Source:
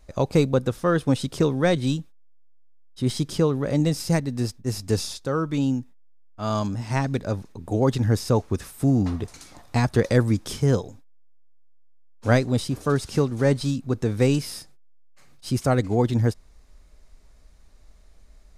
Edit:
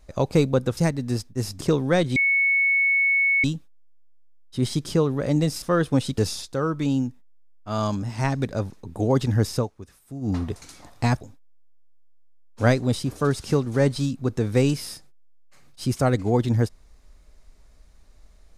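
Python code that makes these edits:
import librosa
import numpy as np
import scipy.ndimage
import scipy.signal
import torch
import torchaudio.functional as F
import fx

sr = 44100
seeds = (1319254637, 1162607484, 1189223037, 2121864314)

y = fx.edit(x, sr, fx.swap(start_s=0.77, length_s=0.56, other_s=4.06, other_length_s=0.84),
    fx.insert_tone(at_s=1.88, length_s=1.28, hz=2210.0, db=-17.0),
    fx.fade_down_up(start_s=8.28, length_s=0.77, db=-15.5, fade_s=0.12),
    fx.cut(start_s=9.93, length_s=0.93), tone=tone)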